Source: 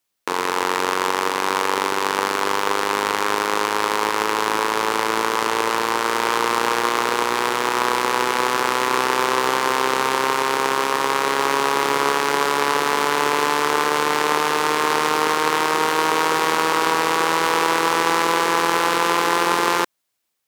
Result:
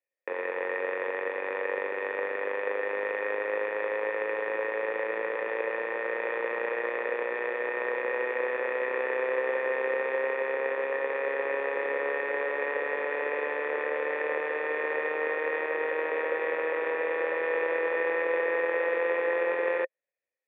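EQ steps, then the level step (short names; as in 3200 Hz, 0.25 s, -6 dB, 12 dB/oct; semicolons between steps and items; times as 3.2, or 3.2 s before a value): vocal tract filter e; Bessel high-pass 420 Hz, order 2; +4.5 dB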